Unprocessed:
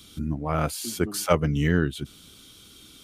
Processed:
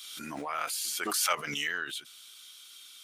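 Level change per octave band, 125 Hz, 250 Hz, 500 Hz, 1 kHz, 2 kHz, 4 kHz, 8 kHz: -27.5 dB, -16.5 dB, -14.0 dB, -3.5 dB, 0.0 dB, +2.5 dB, +2.0 dB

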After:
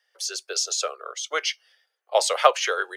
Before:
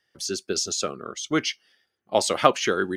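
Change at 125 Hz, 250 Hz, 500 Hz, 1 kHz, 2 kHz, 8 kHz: under -40 dB, -21.5 dB, -0.5 dB, +1.5 dB, +1.5 dB, +1.5 dB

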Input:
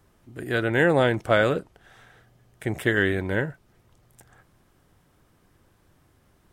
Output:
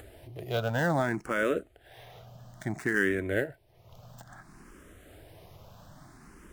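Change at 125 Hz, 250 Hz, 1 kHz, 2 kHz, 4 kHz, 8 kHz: -6.0 dB, -5.5 dB, -5.5 dB, -5.5 dB, -9.0 dB, -0.5 dB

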